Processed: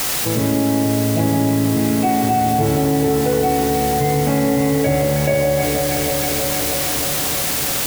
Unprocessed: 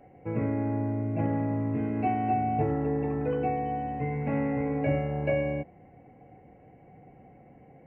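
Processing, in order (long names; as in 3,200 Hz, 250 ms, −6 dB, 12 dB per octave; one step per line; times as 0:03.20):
automatic gain control gain up to 5 dB
bit-depth reduction 6 bits, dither triangular
delay that swaps between a low-pass and a high-pass 158 ms, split 800 Hz, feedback 84%, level −6.5 dB
envelope flattener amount 70%
level +2.5 dB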